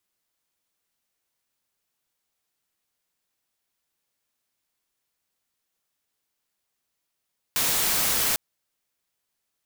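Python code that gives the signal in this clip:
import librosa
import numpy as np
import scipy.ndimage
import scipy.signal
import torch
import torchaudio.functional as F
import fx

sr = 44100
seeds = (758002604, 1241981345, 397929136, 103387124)

y = fx.noise_colour(sr, seeds[0], length_s=0.8, colour='white', level_db=-23.5)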